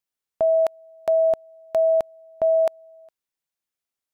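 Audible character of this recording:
background noise floor −88 dBFS
spectral slope 0.0 dB per octave

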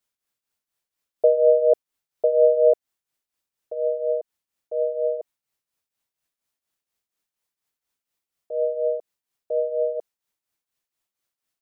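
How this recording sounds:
tremolo triangle 4.2 Hz, depth 75%

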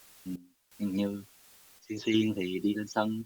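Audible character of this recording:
phaser sweep stages 12, 3.1 Hz, lowest notch 710–2,300 Hz
a quantiser's noise floor 10 bits, dither triangular
sample-and-hold tremolo 2.8 Hz, depth 85%
Opus

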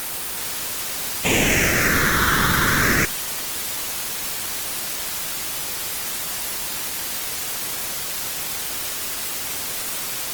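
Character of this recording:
aliases and images of a low sample rate 4,600 Hz
phaser sweep stages 6, 0.31 Hz, lowest notch 680–1,600 Hz
a quantiser's noise floor 6 bits, dither triangular
Opus

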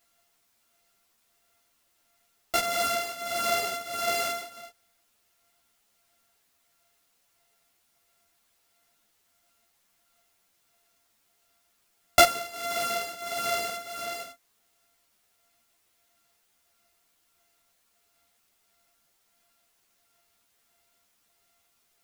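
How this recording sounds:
a buzz of ramps at a fixed pitch in blocks of 64 samples
tremolo triangle 1.5 Hz, depth 85%
a quantiser's noise floor 12 bits, dither triangular
a shimmering, thickened sound

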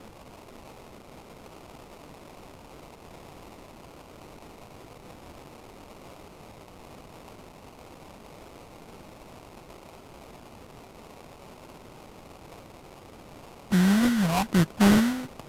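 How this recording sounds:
a quantiser's noise floor 8 bits, dither triangular
phaser sweep stages 8, 1.1 Hz, lowest notch 320–1,400 Hz
aliases and images of a low sample rate 1,700 Hz, jitter 20%
Ogg Vorbis

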